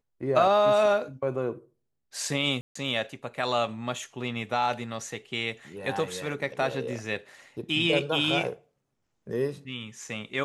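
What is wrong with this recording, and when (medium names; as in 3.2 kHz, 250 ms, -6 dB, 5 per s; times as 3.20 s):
2.61–2.75 s: dropout 144 ms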